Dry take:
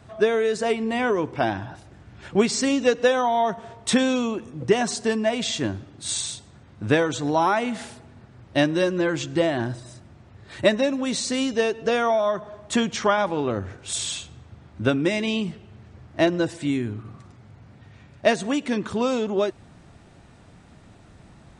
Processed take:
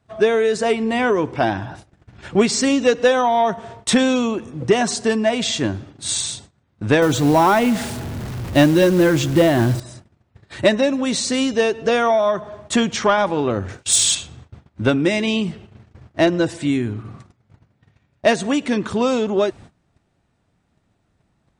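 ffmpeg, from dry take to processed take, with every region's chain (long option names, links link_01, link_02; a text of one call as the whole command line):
ffmpeg -i in.wav -filter_complex "[0:a]asettb=1/sr,asplit=3[link_01][link_02][link_03];[link_01]atrim=end=7.024[link_04];[link_02]atrim=start=7.02:end=9.8,asetpts=PTS-STARTPTS,afade=type=in:duration=0.004:curve=qsin,afade=type=out:start_time=2.776:duration=0.004:curve=qsin,aeval=exprs='val(0)+0.5*0.0178*sgn(val(0))':channel_layout=same,lowshelf=frequency=340:gain=7,acrusher=bits=5:mode=log:mix=0:aa=0.000001[link_05];[link_03]atrim=start=9.796[link_06];[link_04][link_05]acrossfade=duration=0.004:curve1=hsin:curve2=qsin[link_07];[link_07][link_06]acrossfade=duration=0.004:curve1=qsin:curve2=hsin,asettb=1/sr,asplit=3[link_08][link_09][link_10];[link_08]atrim=end=13.684[link_11];[link_09]atrim=start=13.68:end=14.15,asetpts=PTS-STARTPTS,afade=type=in:duration=0.004:curve=qsin,afade=type=out:start_time=0.466:duration=0.004:curve=qsin,agate=range=-33dB:threshold=-41dB:ratio=3:release=100:detection=peak,highshelf=frequency=3100:gain=10.5[link_12];[link_10]atrim=start=14.146[link_13];[link_11][link_12]acrossfade=duration=0.004:curve1=hsin:curve2=qsin[link_14];[link_14][link_13]acrossfade=duration=0.004:curve1=qsin:curve2=hsin,agate=range=-21dB:threshold=-44dB:ratio=16:detection=peak,acontrast=80,volume=-2dB" out.wav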